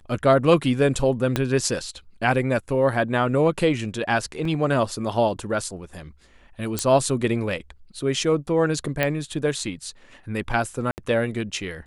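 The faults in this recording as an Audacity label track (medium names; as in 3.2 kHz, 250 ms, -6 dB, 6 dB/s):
1.360000	1.360000	pop -7 dBFS
4.450000	4.450000	dropout 3.2 ms
6.790000	6.790000	pop -7 dBFS
9.030000	9.030000	pop -8 dBFS
10.910000	10.980000	dropout 69 ms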